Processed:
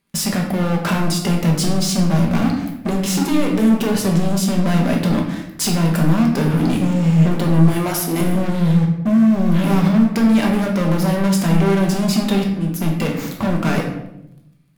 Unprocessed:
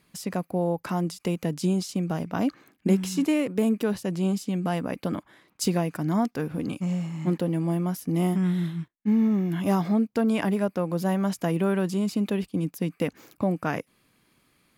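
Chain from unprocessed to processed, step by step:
0:07.68–0:08.21: high-pass filter 590 Hz 12 dB per octave
0:12.44–0:12.95: fade in quadratic
downward compressor 6 to 1, threshold −28 dBFS, peak gain reduction 11.5 dB
leveller curve on the samples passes 5
rectangular room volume 250 cubic metres, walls mixed, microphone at 1.2 metres

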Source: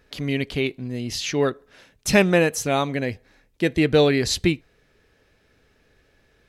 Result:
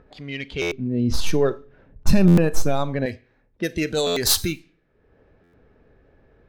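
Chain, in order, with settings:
stylus tracing distortion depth 0.094 ms
upward compression, threshold −31 dBFS
brickwall limiter −15 dBFS, peak gain reduction 11.5 dB
high-shelf EQ 3,700 Hz +11.5 dB
four-comb reverb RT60 0.63 s, combs from 29 ms, DRR 15.5 dB
noise reduction from a noise print of the clip's start 9 dB
low-pass that shuts in the quiet parts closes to 830 Hz, open at −21.5 dBFS
0:00.71–0:03.06: spectral tilt −4 dB per octave
buffer that repeats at 0:00.61/0:02.27/0:04.06/0:05.43, samples 512, times 8

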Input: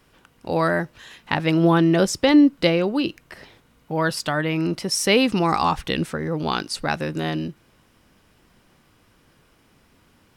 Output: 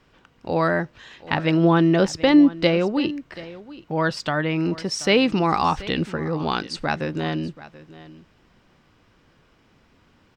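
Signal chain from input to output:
moving average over 4 samples
single-tap delay 732 ms −18 dB

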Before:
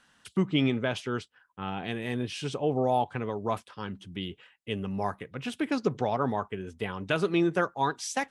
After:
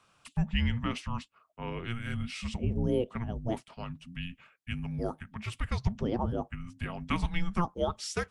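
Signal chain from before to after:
frequency shifter −350 Hz
level −2.5 dB

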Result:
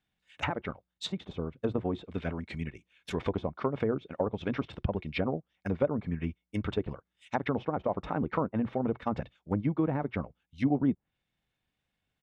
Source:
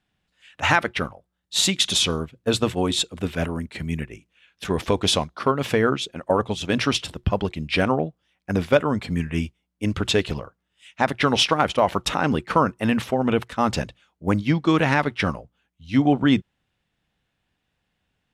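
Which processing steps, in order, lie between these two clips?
tempo change 1.5×
hollow resonant body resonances 2,200/3,600 Hz, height 9 dB, ringing for 50 ms
treble cut that deepens with the level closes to 730 Hz, closed at −17 dBFS
level −8 dB

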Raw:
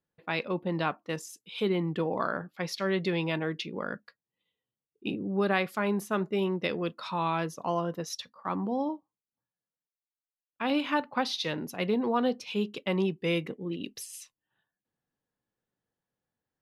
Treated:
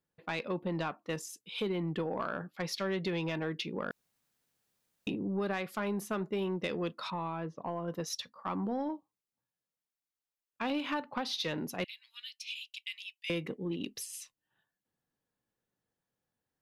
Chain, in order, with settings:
0:11.84–0:13.30: Butterworth high-pass 2,300 Hz 36 dB per octave
downward compressor 5 to 1, threshold −29 dBFS, peak gain reduction 8 dB
soft clipping −23.5 dBFS, distortion −20 dB
0:03.91–0:05.07: fill with room tone
0:07.10–0:07.88: head-to-tape spacing loss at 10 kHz 34 dB

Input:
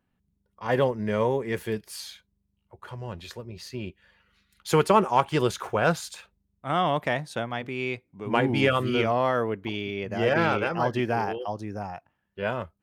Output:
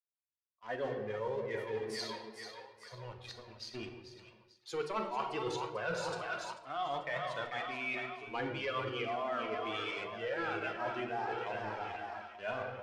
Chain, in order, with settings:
spectral dynamics exaggerated over time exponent 1.5
high-pass filter 100 Hz 24 dB per octave
mains-hum notches 50/100/150/200/250/300/350/400/450 Hz
leveller curve on the samples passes 2
low-pass filter 5,300 Hz 12 dB per octave
echo with a time of its own for lows and highs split 650 Hz, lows 178 ms, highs 442 ms, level −10.5 dB
on a send at −6 dB: convolution reverb RT60 1.3 s, pre-delay 4 ms
on the sum: flanger 0.69 Hz, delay 1.8 ms, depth 1.4 ms, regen −30%
low-shelf EQ 370 Hz −9.5 dB
reversed playback
downward compressor 5 to 1, threshold −37 dBFS, peak gain reduction 18 dB
reversed playback
level +1.5 dB

